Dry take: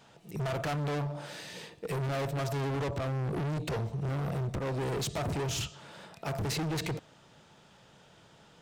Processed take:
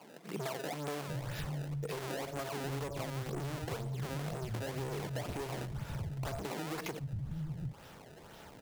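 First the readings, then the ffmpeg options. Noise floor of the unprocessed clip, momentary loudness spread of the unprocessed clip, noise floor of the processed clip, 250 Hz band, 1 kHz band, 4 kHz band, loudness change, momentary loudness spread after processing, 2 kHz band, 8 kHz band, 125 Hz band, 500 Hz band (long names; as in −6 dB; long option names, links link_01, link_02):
−59 dBFS, 9 LU, −54 dBFS, −5.0 dB, −4.5 dB, −6.0 dB, −5.5 dB, 4 LU, −4.0 dB, −6.0 dB, −5.5 dB, −5.0 dB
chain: -filter_complex "[0:a]acrusher=samples=23:mix=1:aa=0.000001:lfo=1:lforange=36.8:lforate=2,acrossover=split=170[link_01][link_02];[link_01]adelay=740[link_03];[link_03][link_02]amix=inputs=2:normalize=0,acompressor=threshold=-42dB:ratio=6,volume=6dB"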